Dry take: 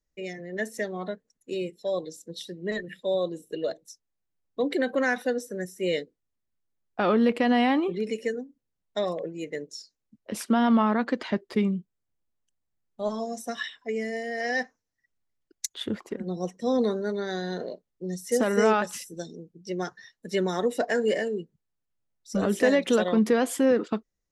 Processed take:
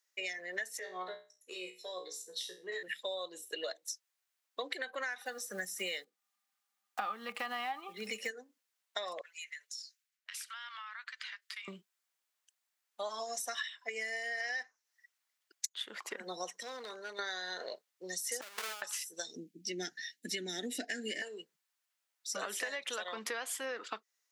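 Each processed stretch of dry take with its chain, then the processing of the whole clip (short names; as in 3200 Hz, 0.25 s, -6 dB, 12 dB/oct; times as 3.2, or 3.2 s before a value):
0.79–2.83 bell 430 Hz +14 dB 0.22 oct + compressor 2:1, threshold -30 dBFS + resonator 61 Hz, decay 0.33 s, mix 90%
5.21–8.31 block floating point 7-bit + small resonant body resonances 200/790/1200 Hz, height 16 dB, ringing for 95 ms
9.21–11.68 HPF 1400 Hz 24 dB/oct + compressor, threshold -51 dBFS + mismatched tape noise reduction decoder only
16.49–17.19 compressor 4:1, threshold -38 dBFS + hard clip -33.5 dBFS
18.41–18.82 half-waves squared off + expander -6 dBFS
19.36–21.22 Butterworth band-stop 1100 Hz, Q 0.97 + resonant low shelf 380 Hz +11.5 dB, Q 3
whole clip: HPF 1200 Hz 12 dB/oct; compressor 12:1, threshold -45 dBFS; gain +9.5 dB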